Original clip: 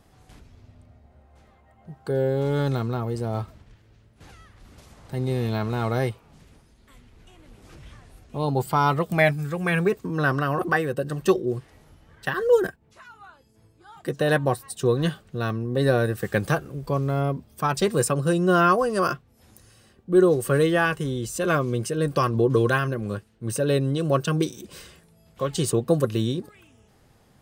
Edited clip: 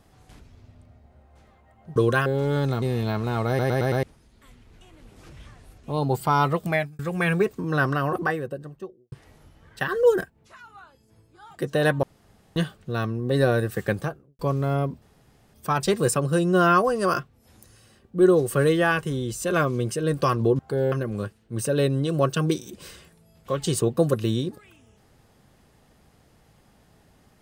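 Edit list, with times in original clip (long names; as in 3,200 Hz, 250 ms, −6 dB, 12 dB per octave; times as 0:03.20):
0:01.96–0:02.29: swap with 0:22.53–0:22.83
0:02.85–0:05.28: remove
0:05.94: stutter in place 0.11 s, 5 plays
0:09.05–0:09.45: fade out
0:10.41–0:11.58: fade out and dull
0:14.49–0:15.02: fill with room tone
0:16.23–0:16.85: fade out and dull
0:17.48: splice in room tone 0.52 s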